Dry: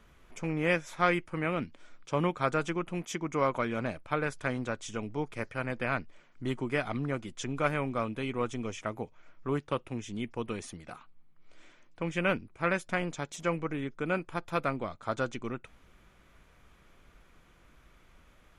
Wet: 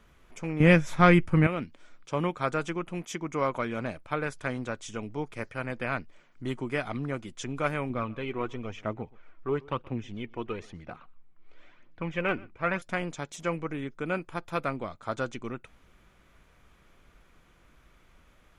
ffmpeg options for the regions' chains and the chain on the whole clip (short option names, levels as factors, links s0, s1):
-filter_complex "[0:a]asettb=1/sr,asplit=3[s0][s1][s2];[s0]atrim=end=0.604[s3];[s1]atrim=start=0.6:end=1.47,asetpts=PTS-STARTPTS,afade=t=in:d=0.004:c=qsin,afade=t=out:st=0.866:d=0.004:c=qsin,bass=f=250:g=12,treble=f=4000:g=-2,acontrast=45[s4];[s2]atrim=start=1.466[s5];[s3][s4]acrossfade=d=0.004:c1=hsin:c2=qsin[s6];[s6][s5]acrossfade=d=0.004:c1=qsin:c2=hsin,asettb=1/sr,asplit=3[s7][s8][s9];[s7]atrim=end=7.904[s10];[s8]atrim=start=7.9:end=12.82,asetpts=PTS-STARTPTS,afade=t=in:d=0.004:c=qsin,afade=t=out:st=4.916:d=0.004:c=qsin,lowpass=3300,aphaser=in_gain=1:out_gain=1:delay=3.1:decay=0.42:speed=1:type=triangular,aecho=1:1:125:0.0668,atrim=end_sample=216972[s11];[s9]atrim=start=12.816[s12];[s10][s11]acrossfade=d=0.004:c1=hsin:c2=qsin[s13];[s13][s12]acrossfade=d=0.004:c1=qsin:c2=hsin"